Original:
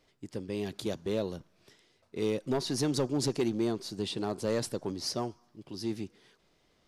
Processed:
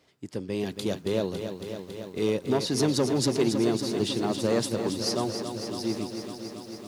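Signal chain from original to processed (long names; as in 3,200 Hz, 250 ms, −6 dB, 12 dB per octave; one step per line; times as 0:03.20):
high-pass filter 77 Hz
feedback echo at a low word length 277 ms, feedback 80%, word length 10 bits, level −8 dB
level +4.5 dB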